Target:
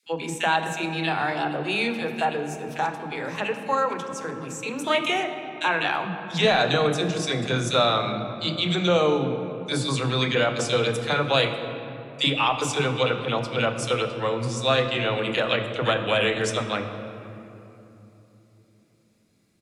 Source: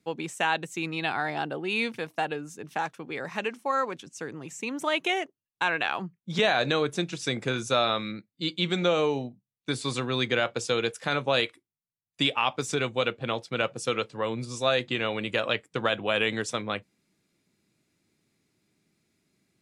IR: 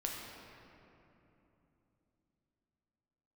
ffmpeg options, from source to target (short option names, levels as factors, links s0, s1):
-filter_complex "[0:a]acrossover=split=300|2000[s0][s1][s2];[s1]adelay=30[s3];[s0]adelay=60[s4];[s4][s3][s2]amix=inputs=3:normalize=0,asplit=2[s5][s6];[1:a]atrim=start_sample=2205,lowshelf=f=150:g=4.5[s7];[s6][s7]afir=irnorm=-1:irlink=0,volume=0.841[s8];[s5][s8]amix=inputs=2:normalize=0"